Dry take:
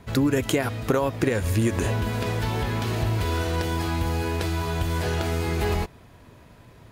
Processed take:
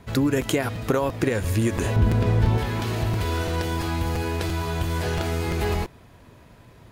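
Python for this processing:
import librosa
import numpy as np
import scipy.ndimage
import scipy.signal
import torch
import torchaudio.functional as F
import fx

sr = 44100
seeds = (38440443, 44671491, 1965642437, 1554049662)

y = fx.tilt_eq(x, sr, slope=-2.5, at=(1.96, 2.58))
y = fx.buffer_crackle(y, sr, first_s=0.41, period_s=0.34, block=256, kind='repeat')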